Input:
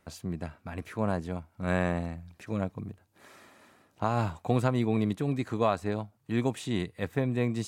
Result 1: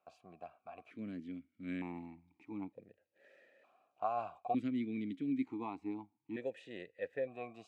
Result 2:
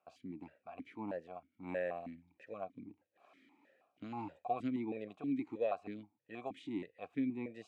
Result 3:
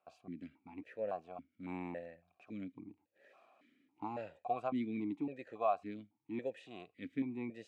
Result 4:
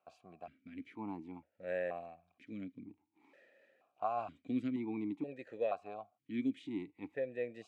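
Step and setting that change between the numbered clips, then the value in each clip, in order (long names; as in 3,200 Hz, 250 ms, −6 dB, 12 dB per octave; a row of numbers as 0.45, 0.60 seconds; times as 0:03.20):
formant filter that steps through the vowels, speed: 1.1, 6.3, 3.6, 2.1 Hertz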